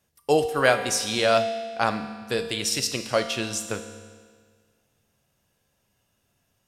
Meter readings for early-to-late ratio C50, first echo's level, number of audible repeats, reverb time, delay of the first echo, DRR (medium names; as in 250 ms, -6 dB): 9.0 dB, no echo, no echo, 1.7 s, no echo, 7.0 dB